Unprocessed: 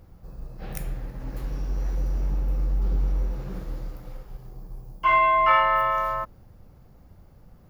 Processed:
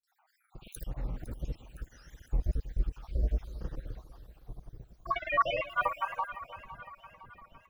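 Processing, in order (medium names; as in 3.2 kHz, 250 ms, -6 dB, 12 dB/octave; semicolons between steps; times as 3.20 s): random holes in the spectrogram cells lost 75%; granulator 100 ms, grains 20 per s, spray 100 ms, pitch spread up and down by 3 st; two-band feedback delay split 750 Hz, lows 320 ms, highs 509 ms, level -13.5 dB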